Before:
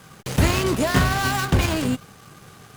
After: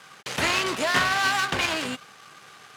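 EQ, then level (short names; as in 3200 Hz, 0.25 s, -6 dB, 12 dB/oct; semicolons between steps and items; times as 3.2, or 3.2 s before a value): band-pass 2400 Hz, Q 0.52; +3.0 dB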